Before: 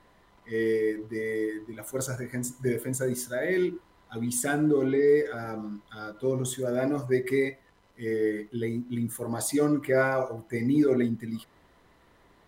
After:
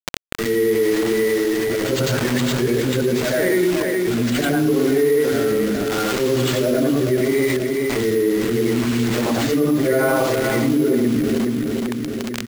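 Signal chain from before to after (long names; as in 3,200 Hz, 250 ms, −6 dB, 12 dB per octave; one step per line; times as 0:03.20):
every overlapping window played backwards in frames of 236 ms
high-pass filter 110 Hz 24 dB per octave
noise gate with hold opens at −54 dBFS
high-shelf EQ 6,000 Hz −8.5 dB
upward compression, threshold −39 dBFS
bit reduction 7 bits
rotating-speaker cabinet horn 0.75 Hz
repeating echo 421 ms, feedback 28%, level −10 dB
bad sample-rate conversion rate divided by 4×, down none, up hold
envelope flattener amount 70%
level +7.5 dB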